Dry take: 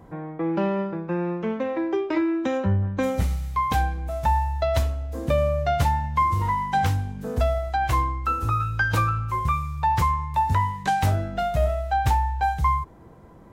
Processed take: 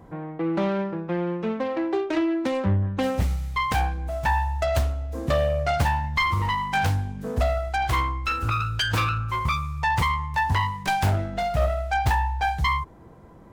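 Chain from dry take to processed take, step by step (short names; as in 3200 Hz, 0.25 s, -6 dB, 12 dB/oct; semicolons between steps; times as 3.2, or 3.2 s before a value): self-modulated delay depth 0.38 ms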